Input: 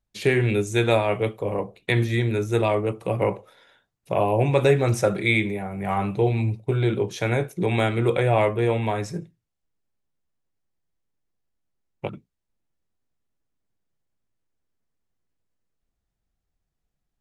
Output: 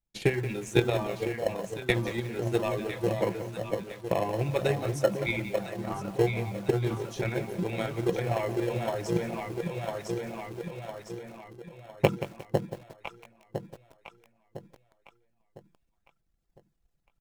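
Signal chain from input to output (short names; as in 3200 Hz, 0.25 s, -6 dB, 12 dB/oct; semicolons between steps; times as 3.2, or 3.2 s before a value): reverb removal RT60 1.9 s; comb 5.9 ms, depth 34%; on a send: echo with dull and thin repeats by turns 0.503 s, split 840 Hz, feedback 63%, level -4 dB; on the sum: vocal rider 2 s; in parallel at -12 dB: sample-and-hold 37×; on the sum: transient shaper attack +10 dB, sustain +6 dB; lo-fi delay 0.178 s, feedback 35%, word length 5-bit, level -12 dB; gain -11.5 dB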